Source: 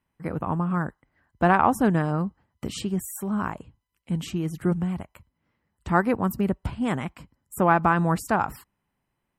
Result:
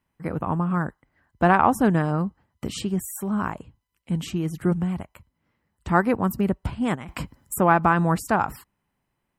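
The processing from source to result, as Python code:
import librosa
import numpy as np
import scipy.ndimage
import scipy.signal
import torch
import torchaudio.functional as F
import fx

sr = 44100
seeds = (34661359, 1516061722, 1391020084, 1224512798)

y = fx.over_compress(x, sr, threshold_db=-41.0, ratio=-1.0, at=(6.94, 7.57), fade=0.02)
y = y * librosa.db_to_amplitude(1.5)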